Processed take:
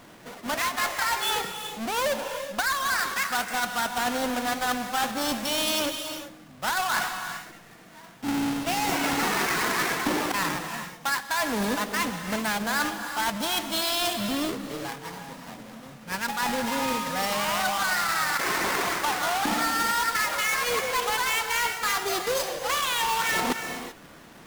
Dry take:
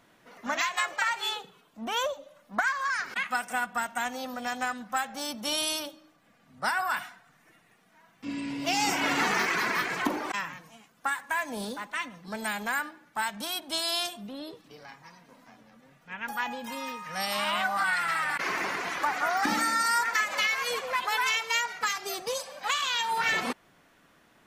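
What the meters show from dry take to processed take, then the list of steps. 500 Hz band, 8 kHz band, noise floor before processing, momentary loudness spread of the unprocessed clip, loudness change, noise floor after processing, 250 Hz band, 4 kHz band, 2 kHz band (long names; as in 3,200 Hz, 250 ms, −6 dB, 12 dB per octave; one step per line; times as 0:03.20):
+6.0 dB, +6.0 dB, −63 dBFS, 12 LU, +3.0 dB, −48 dBFS, +6.5 dB, +3.5 dB, +1.5 dB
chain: each half-wave held at its own peak
pitch vibrato 9.5 Hz 9.4 cents
reversed playback
downward compressor, threshold −33 dBFS, peak gain reduction 14.5 dB
reversed playback
reverb whose tail is shaped and stops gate 410 ms rising, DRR 7 dB
level +7.5 dB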